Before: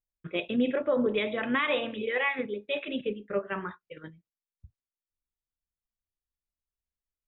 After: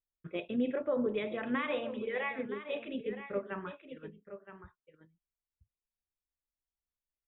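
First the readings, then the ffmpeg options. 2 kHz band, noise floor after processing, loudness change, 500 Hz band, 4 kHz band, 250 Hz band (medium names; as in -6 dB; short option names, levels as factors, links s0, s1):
-8.5 dB, under -85 dBFS, -6.0 dB, -5.0 dB, no reading, -4.5 dB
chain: -af "highshelf=f=2600:g=-10.5,aecho=1:1:970:0.266,volume=0.562"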